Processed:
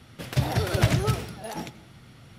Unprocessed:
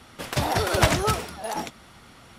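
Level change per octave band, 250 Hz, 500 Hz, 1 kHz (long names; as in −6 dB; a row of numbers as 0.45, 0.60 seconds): 0.0, −4.5, −7.5 decibels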